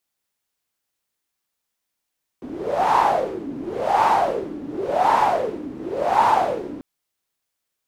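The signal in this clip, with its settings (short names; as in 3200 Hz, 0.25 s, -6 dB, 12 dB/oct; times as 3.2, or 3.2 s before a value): wind-like swept noise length 4.39 s, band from 280 Hz, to 920 Hz, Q 7, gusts 4, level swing 15.5 dB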